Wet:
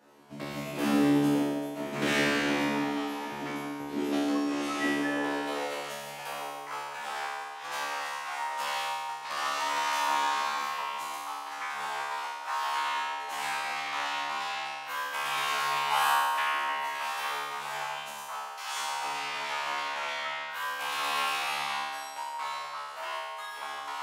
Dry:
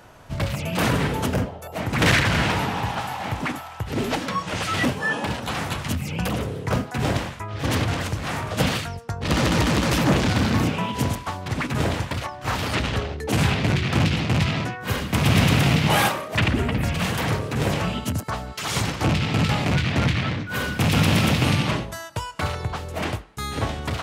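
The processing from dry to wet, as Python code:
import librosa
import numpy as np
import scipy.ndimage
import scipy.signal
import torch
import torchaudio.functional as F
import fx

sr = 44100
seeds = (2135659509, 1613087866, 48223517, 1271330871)

y = fx.filter_sweep_highpass(x, sr, from_hz=270.0, to_hz=970.0, start_s=4.48, end_s=6.64, q=2.6)
y = fx.comb_fb(y, sr, f0_hz=72.0, decay_s=1.5, harmonics='all', damping=0.0, mix_pct=100)
y = fx.echo_banded(y, sr, ms=160, feedback_pct=48, hz=550.0, wet_db=-4.5)
y = y * librosa.db_to_amplitude(7.0)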